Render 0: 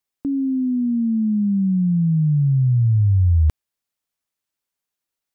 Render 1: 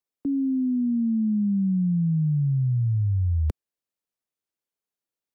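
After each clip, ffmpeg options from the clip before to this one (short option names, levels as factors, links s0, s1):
-filter_complex "[0:a]equalizer=f=430:w=1:g=7,acrossover=split=170|220[s0][s1][s2];[s1]acontrast=35[s3];[s0][s3][s2]amix=inputs=3:normalize=0,volume=0.376"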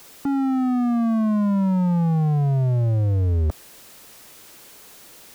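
-af "aeval=exprs='val(0)+0.5*0.0266*sgn(val(0))':c=same,aeval=exprs='0.178*(cos(1*acos(clip(val(0)/0.178,-1,1)))-cos(1*PI/2))+0.0398*(cos(7*acos(clip(val(0)/0.178,-1,1)))-cos(7*PI/2))':c=same"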